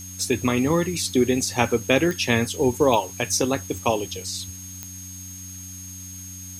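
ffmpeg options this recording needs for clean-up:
-af "adeclick=t=4,bandreject=f=93.1:t=h:w=4,bandreject=f=186.2:t=h:w=4,bandreject=f=279.3:t=h:w=4,bandreject=f=6500:w=30,afftdn=nr=30:nf=-38"

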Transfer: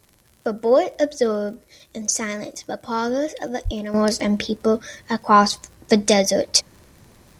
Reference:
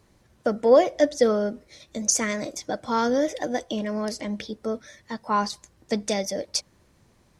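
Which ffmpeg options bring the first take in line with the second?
-filter_complex "[0:a]adeclick=t=4,asplit=3[s0][s1][s2];[s0]afade=t=out:st=3.64:d=0.02[s3];[s1]highpass=f=140:w=0.5412,highpass=f=140:w=1.3066,afade=t=in:st=3.64:d=0.02,afade=t=out:st=3.76:d=0.02[s4];[s2]afade=t=in:st=3.76:d=0.02[s5];[s3][s4][s5]amix=inputs=3:normalize=0,agate=range=0.0891:threshold=0.00631,asetnsamples=n=441:p=0,asendcmd='3.94 volume volume -10dB',volume=1"

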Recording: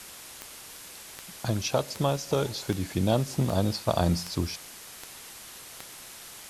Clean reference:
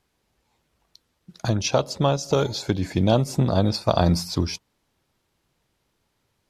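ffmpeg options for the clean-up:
-af "adeclick=t=4,afwtdn=0.0071,asetnsamples=n=441:p=0,asendcmd='0.71 volume volume 5.5dB',volume=1"

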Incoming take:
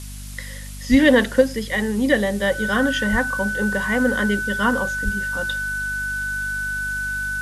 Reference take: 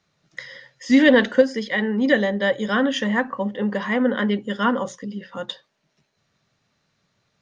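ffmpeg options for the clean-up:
-filter_complex "[0:a]bandreject=f=49.5:t=h:w=4,bandreject=f=99:t=h:w=4,bandreject=f=148.5:t=h:w=4,bandreject=f=198:t=h:w=4,bandreject=f=247.5:t=h:w=4,bandreject=f=1500:w=30,asplit=3[s0][s1][s2];[s0]afade=t=out:st=0.9:d=0.02[s3];[s1]highpass=f=140:w=0.5412,highpass=f=140:w=1.3066,afade=t=in:st=0.9:d=0.02,afade=t=out:st=1.02:d=0.02[s4];[s2]afade=t=in:st=1.02:d=0.02[s5];[s3][s4][s5]amix=inputs=3:normalize=0,asplit=3[s6][s7][s8];[s6]afade=t=out:st=3.11:d=0.02[s9];[s7]highpass=f=140:w=0.5412,highpass=f=140:w=1.3066,afade=t=in:st=3.11:d=0.02,afade=t=out:st=3.23:d=0.02[s10];[s8]afade=t=in:st=3.23:d=0.02[s11];[s9][s10][s11]amix=inputs=3:normalize=0,asplit=3[s12][s13][s14];[s12]afade=t=out:st=5.04:d=0.02[s15];[s13]highpass=f=140:w=0.5412,highpass=f=140:w=1.3066,afade=t=in:st=5.04:d=0.02,afade=t=out:st=5.16:d=0.02[s16];[s14]afade=t=in:st=5.16:d=0.02[s17];[s15][s16][s17]amix=inputs=3:normalize=0,afftdn=nr=30:nf=-33"

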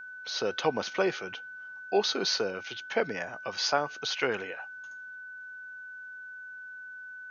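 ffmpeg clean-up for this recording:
-af "bandreject=f=1500:w=30"

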